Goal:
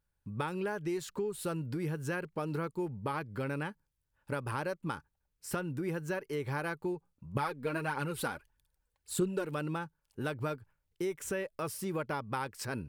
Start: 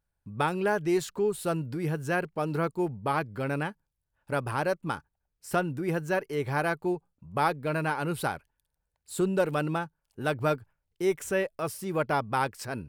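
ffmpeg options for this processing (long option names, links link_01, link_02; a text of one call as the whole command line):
ffmpeg -i in.wav -filter_complex "[0:a]equalizer=frequency=700:width=6.7:gain=-9,acompressor=threshold=-32dB:ratio=6,asettb=1/sr,asplit=3[link_01][link_02][link_03];[link_01]atrim=end=7.354[link_04];[link_02]atrim=start=7.35:end=9.45,asetpts=PTS-STARTPTS,afade=type=in:duration=0.004:curve=qsin,afade=type=out:start_time=2.096:duration=0.004:curve=qsin,aphaser=in_gain=1:out_gain=1:delay=4.5:decay=0.51:speed=1.6:type=triangular[link_05];[link_03]atrim=start=9.446[link_06];[link_04][link_05]acrossfade=duration=0.004:curve1=hsin:curve2=qsin[link_07];[link_07][link_06]acrossfade=duration=0.004:curve1=qsin:curve2=hsin" out.wav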